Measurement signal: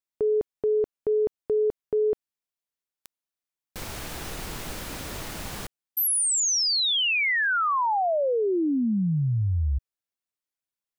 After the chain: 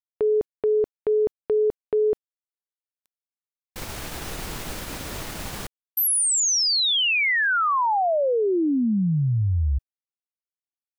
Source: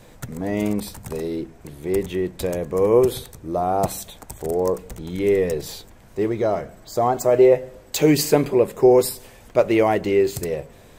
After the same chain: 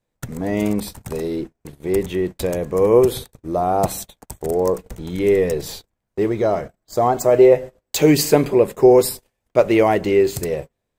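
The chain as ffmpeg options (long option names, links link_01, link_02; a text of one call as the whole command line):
ffmpeg -i in.wav -af "agate=range=-33dB:threshold=-35dB:ratio=3:release=52:detection=rms,volume=2.5dB" out.wav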